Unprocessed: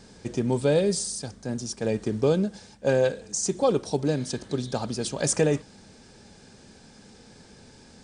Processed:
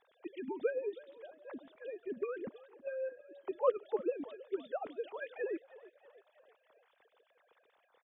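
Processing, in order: sine-wave speech; harmonic-percussive split harmonic -15 dB; frequency-shifting echo 0.32 s, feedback 52%, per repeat +37 Hz, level -18.5 dB; gain -4.5 dB

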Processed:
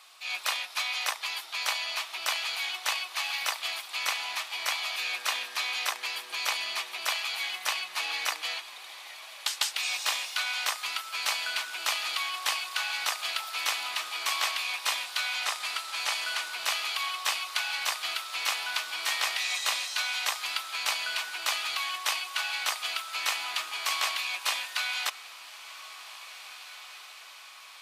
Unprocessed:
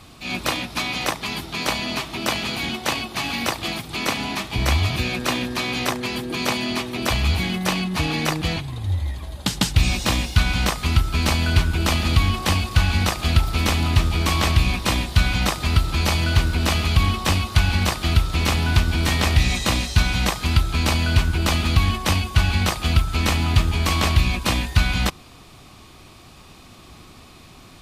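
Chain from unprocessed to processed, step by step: 15.43–16.51 CVSD 64 kbps; Bessel high-pass 1100 Hz, order 4; on a send: diffused feedback echo 1.983 s, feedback 54%, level -15.5 dB; on the sum: gain -4 dB

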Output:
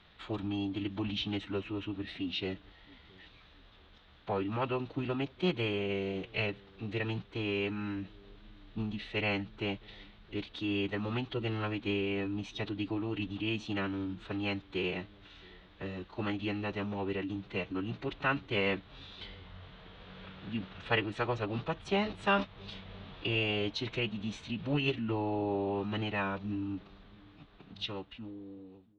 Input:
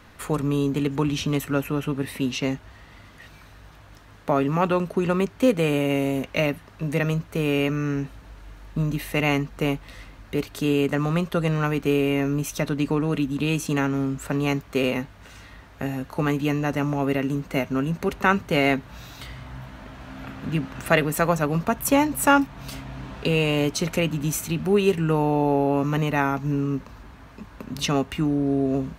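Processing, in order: ending faded out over 2.30 s; ladder low-pass 3900 Hz, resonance 70%; formant-preserving pitch shift -6 st; on a send: dark delay 0.671 s, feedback 38%, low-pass 450 Hz, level -23 dB

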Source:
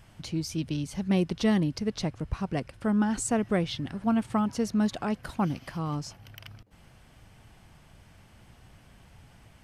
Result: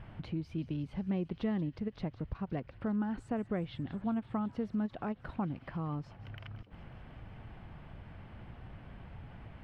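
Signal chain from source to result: compressor 2:1, threshold -49 dBFS, peak gain reduction 16 dB; air absorption 480 m; thin delay 0.182 s, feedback 79%, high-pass 3000 Hz, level -14 dB; ending taper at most 560 dB/s; gain +6.5 dB

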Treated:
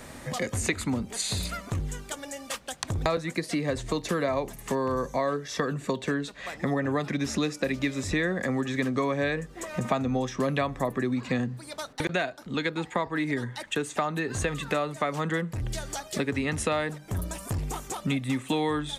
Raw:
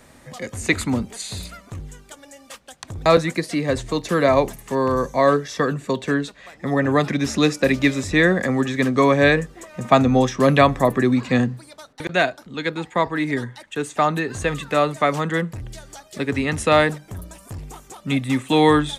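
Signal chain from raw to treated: compressor 5:1, threshold -32 dBFS, peak gain reduction 20.5 dB; gain +5.5 dB

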